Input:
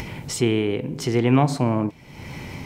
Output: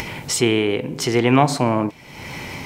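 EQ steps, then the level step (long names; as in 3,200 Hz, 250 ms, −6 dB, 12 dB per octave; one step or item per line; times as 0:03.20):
low-shelf EQ 340 Hz −9.5 dB
+7.5 dB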